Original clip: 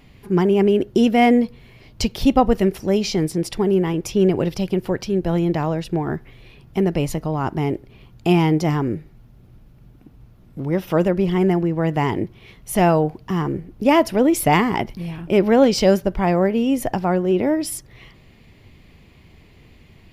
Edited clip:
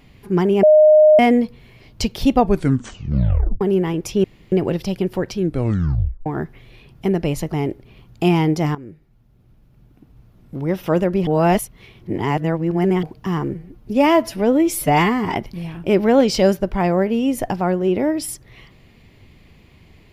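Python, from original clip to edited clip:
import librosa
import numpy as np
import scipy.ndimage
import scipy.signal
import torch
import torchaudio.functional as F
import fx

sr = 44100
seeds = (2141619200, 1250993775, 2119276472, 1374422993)

y = fx.edit(x, sr, fx.bleep(start_s=0.63, length_s=0.56, hz=614.0, db=-6.5),
    fx.tape_stop(start_s=2.34, length_s=1.27),
    fx.insert_room_tone(at_s=4.24, length_s=0.28),
    fx.tape_stop(start_s=5.1, length_s=0.88),
    fx.cut(start_s=7.24, length_s=0.32),
    fx.fade_in_from(start_s=8.79, length_s=1.8, floor_db=-16.0),
    fx.reverse_span(start_s=11.31, length_s=1.76),
    fx.stretch_span(start_s=13.57, length_s=1.21, factor=1.5), tone=tone)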